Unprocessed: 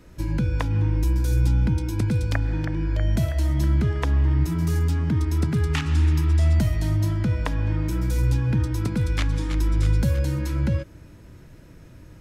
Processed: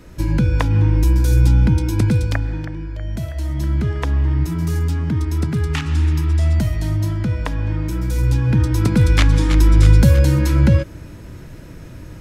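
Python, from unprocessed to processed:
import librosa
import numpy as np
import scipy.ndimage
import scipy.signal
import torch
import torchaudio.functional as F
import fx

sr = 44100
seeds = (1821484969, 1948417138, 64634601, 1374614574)

y = fx.gain(x, sr, db=fx.line((2.1, 7.0), (2.95, -5.0), (3.91, 2.5), (8.06, 2.5), (9.02, 10.0)))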